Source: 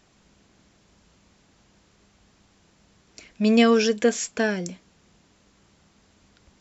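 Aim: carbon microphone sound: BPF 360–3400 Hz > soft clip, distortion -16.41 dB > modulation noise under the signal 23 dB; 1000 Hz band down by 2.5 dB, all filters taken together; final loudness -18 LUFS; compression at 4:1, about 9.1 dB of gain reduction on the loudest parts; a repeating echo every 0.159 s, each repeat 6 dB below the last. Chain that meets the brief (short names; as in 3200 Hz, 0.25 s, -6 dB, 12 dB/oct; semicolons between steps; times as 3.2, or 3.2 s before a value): bell 1000 Hz -3.5 dB; compressor 4:1, threshold -25 dBFS; BPF 360–3400 Hz; feedback echo 0.159 s, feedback 50%, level -6 dB; soft clip -24 dBFS; modulation noise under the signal 23 dB; gain +16.5 dB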